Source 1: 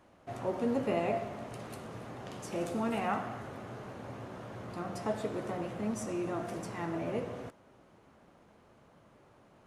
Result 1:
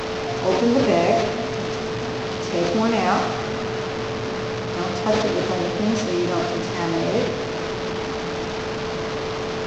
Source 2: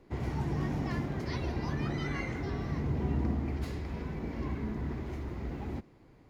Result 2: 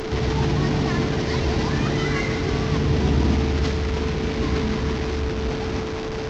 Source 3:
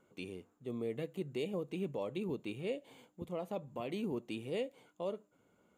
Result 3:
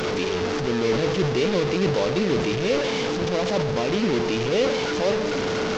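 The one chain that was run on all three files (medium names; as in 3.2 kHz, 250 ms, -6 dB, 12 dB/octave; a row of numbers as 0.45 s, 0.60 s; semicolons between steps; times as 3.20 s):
one-bit delta coder 32 kbps, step -35 dBFS; on a send: two-band feedback delay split 310 Hz, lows 704 ms, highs 137 ms, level -13 dB; on the sum: whistle 440 Hz -40 dBFS; decay stretcher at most 45 dB/s; normalise loudness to -23 LUFS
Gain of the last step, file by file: +12.0 dB, +10.5 dB, +14.0 dB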